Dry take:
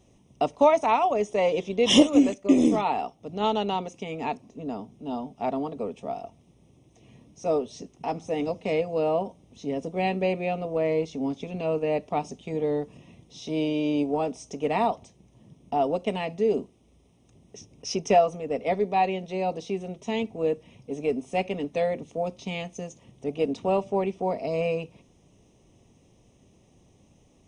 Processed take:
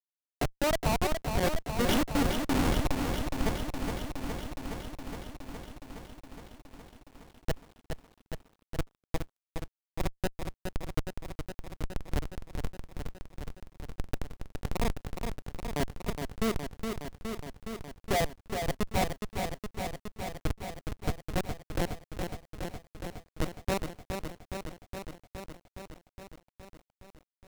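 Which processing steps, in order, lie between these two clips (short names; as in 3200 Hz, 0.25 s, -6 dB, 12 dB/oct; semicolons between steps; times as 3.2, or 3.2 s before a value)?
Schmitt trigger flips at -17.5 dBFS; lo-fi delay 0.416 s, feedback 80%, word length 10-bit, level -6 dB; gain +1.5 dB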